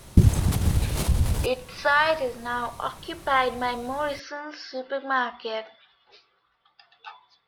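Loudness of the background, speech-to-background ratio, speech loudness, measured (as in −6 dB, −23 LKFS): −24.0 LKFS, −3.0 dB, −27.0 LKFS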